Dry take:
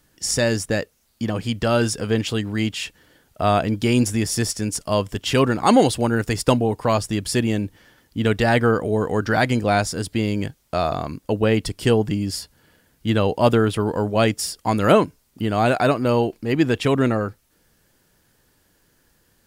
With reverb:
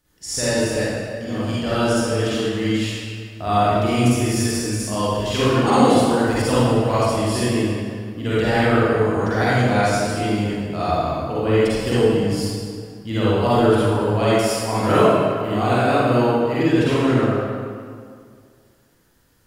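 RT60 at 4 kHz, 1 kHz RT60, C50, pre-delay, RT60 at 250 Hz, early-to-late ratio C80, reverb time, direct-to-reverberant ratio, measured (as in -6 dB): 1.5 s, 2.1 s, -7.0 dB, 39 ms, 2.3 s, -3.0 dB, 2.1 s, -10.5 dB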